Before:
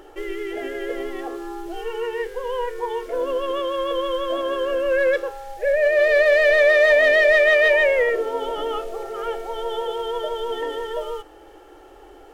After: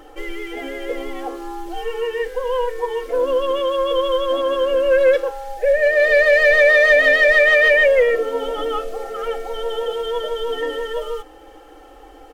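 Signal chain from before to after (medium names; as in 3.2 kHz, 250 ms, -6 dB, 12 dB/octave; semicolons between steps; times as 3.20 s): comb 3.9 ms, depth 98%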